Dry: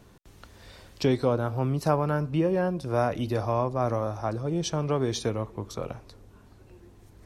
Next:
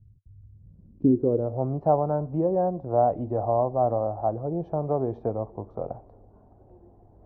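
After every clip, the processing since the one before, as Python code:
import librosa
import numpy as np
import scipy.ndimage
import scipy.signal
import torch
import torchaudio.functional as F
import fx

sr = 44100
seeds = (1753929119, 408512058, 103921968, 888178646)

y = fx.filter_sweep_lowpass(x, sr, from_hz=100.0, to_hz=730.0, start_s=0.43, end_s=1.67, q=3.7)
y = fx.high_shelf(y, sr, hz=2200.0, db=-12.0)
y = y * 10.0 ** (-2.5 / 20.0)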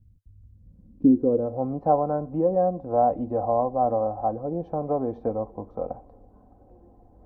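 y = x + 0.54 * np.pad(x, (int(3.9 * sr / 1000.0), 0))[:len(x)]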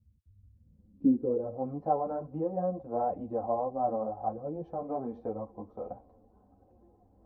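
y = scipy.signal.sosfilt(scipy.signal.butter(2, 42.0, 'highpass', fs=sr, output='sos'), x)
y = fx.ensemble(y, sr)
y = y * 10.0 ** (-4.5 / 20.0)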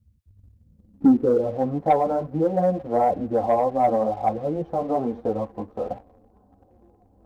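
y = fx.leveller(x, sr, passes=1)
y = y * 10.0 ** (7.0 / 20.0)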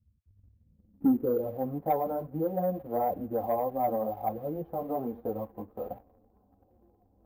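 y = fx.high_shelf(x, sr, hz=2700.0, db=-11.0)
y = np.repeat(scipy.signal.resample_poly(y, 1, 3), 3)[:len(y)]
y = y * 10.0 ** (-8.0 / 20.0)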